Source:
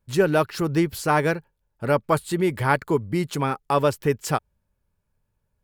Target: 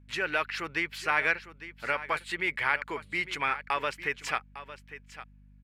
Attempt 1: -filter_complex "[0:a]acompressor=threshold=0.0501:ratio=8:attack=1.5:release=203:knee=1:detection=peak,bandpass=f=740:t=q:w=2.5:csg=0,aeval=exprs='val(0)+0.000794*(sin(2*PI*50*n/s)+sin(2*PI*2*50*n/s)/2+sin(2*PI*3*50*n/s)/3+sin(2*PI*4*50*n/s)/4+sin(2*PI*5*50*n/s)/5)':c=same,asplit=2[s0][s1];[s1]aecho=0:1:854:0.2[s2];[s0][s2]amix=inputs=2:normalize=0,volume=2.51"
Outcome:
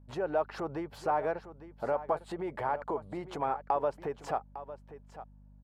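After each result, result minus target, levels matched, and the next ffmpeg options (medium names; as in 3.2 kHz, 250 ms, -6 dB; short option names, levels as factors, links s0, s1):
2 kHz band -13.5 dB; compression: peak gain reduction +9.5 dB
-filter_complex "[0:a]acompressor=threshold=0.0501:ratio=8:attack=1.5:release=203:knee=1:detection=peak,bandpass=f=2200:t=q:w=2.5:csg=0,aeval=exprs='val(0)+0.000794*(sin(2*PI*50*n/s)+sin(2*PI*2*50*n/s)/2+sin(2*PI*3*50*n/s)/3+sin(2*PI*4*50*n/s)/4+sin(2*PI*5*50*n/s)/5)':c=same,asplit=2[s0][s1];[s1]aecho=0:1:854:0.2[s2];[s0][s2]amix=inputs=2:normalize=0,volume=2.51"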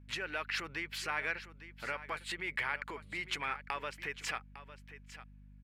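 compression: peak gain reduction +9.5 dB
-filter_complex "[0:a]acompressor=threshold=0.178:ratio=8:attack=1.5:release=203:knee=1:detection=peak,bandpass=f=2200:t=q:w=2.5:csg=0,aeval=exprs='val(0)+0.000794*(sin(2*PI*50*n/s)+sin(2*PI*2*50*n/s)/2+sin(2*PI*3*50*n/s)/3+sin(2*PI*4*50*n/s)/4+sin(2*PI*5*50*n/s)/5)':c=same,asplit=2[s0][s1];[s1]aecho=0:1:854:0.2[s2];[s0][s2]amix=inputs=2:normalize=0,volume=2.51"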